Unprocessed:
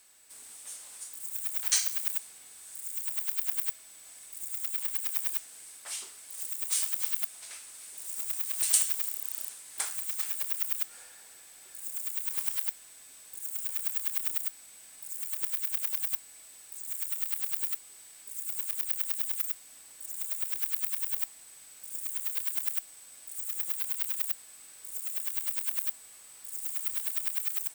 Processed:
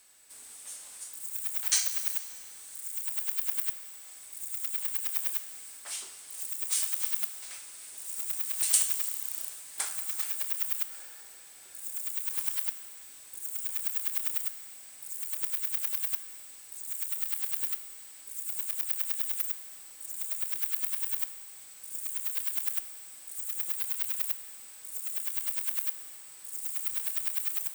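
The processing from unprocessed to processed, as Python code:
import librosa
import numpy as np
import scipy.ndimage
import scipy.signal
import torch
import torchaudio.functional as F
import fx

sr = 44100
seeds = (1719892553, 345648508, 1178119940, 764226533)

y = fx.steep_highpass(x, sr, hz=310.0, slope=48, at=(2.75, 4.16))
y = fx.rev_plate(y, sr, seeds[0], rt60_s=3.0, hf_ratio=0.8, predelay_ms=0, drr_db=10.0)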